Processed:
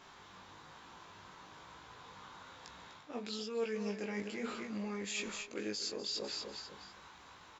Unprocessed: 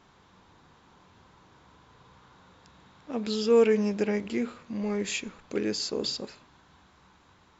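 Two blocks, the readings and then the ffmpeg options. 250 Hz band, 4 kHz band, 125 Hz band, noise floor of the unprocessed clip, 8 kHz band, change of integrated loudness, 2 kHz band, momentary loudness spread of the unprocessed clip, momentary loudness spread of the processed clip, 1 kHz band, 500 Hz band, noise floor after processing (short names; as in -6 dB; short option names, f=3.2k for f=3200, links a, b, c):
-12.0 dB, -5.5 dB, -11.0 dB, -60 dBFS, n/a, -11.5 dB, -5.5 dB, 14 LU, 17 LU, -6.0 dB, -14.5 dB, -57 dBFS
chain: -af "lowshelf=f=460:g=-10,aecho=1:1:249|498|747:0.224|0.0784|0.0274,areverse,acompressor=threshold=-44dB:ratio=5,areverse,flanger=delay=17.5:depth=2.9:speed=1.1,volume=9dB"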